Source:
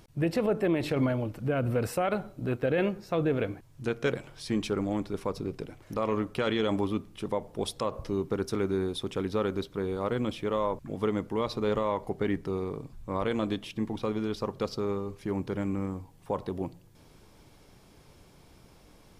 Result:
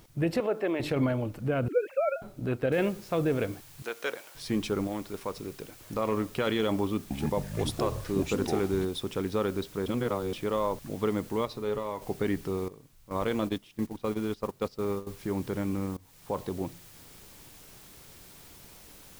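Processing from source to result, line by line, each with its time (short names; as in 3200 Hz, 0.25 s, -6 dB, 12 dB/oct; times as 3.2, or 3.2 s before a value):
0.4–0.8 BPF 350–4300 Hz
1.68–2.22 sine-wave speech
2.72 noise floor step -66 dB -53 dB
3.82–4.35 HPF 590 Hz
4.87–5.81 low shelf 440 Hz -7 dB
6.84–8.85 echoes that change speed 0.265 s, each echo -6 st, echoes 3
9.86–10.33 reverse
11.45–12.02 resonator 140 Hz, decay 0.22 s
12.68–15.07 gate -33 dBFS, range -14 dB
15.97–16.51 fade in equal-power, from -20.5 dB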